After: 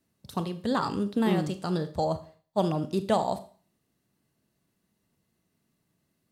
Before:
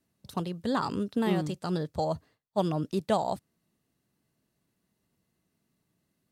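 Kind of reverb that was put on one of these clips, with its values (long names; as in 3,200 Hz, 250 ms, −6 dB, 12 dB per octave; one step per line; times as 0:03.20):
four-comb reverb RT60 0.42 s, combs from 28 ms, DRR 10.5 dB
level +1.5 dB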